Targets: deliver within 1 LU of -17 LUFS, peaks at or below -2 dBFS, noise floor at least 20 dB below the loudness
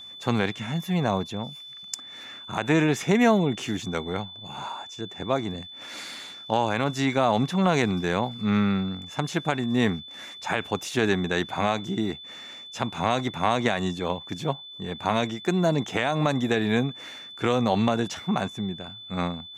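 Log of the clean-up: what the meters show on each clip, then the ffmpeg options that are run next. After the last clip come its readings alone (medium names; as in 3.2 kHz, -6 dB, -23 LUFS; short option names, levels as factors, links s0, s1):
steady tone 3.5 kHz; tone level -40 dBFS; loudness -26.0 LUFS; peak level -8.5 dBFS; loudness target -17.0 LUFS
-> -af "bandreject=f=3500:w=30"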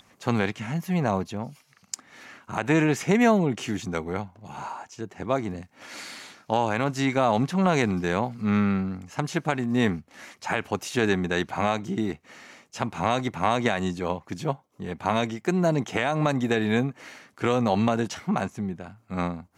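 steady tone not found; loudness -26.0 LUFS; peak level -8.5 dBFS; loudness target -17.0 LUFS
-> -af "volume=2.82,alimiter=limit=0.794:level=0:latency=1"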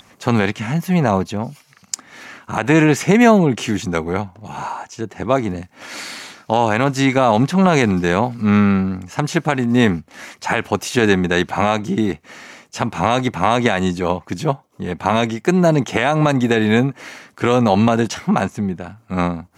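loudness -17.5 LUFS; peak level -2.0 dBFS; noise floor -53 dBFS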